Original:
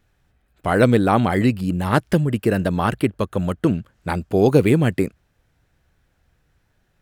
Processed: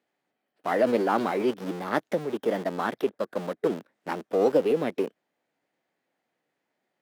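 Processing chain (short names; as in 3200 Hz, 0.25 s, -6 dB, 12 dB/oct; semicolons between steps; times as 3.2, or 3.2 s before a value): in parallel at -7 dB: Schmitt trigger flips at -25.5 dBFS; on the sum: HPF 260 Hz 24 dB/oct; tilt -2 dB/oct; formant shift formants +3 st; gain -9 dB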